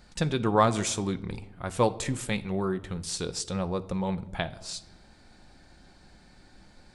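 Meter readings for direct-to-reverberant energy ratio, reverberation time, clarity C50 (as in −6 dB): 10.0 dB, 0.90 s, 17.5 dB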